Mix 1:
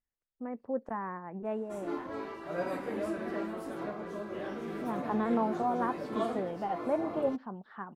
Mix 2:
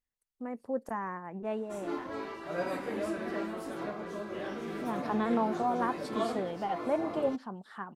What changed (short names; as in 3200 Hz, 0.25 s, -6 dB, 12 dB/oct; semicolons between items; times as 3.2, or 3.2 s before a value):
speech: remove LPF 2800 Hz 12 dB/oct; master: add bell 5400 Hz +5 dB 2.8 oct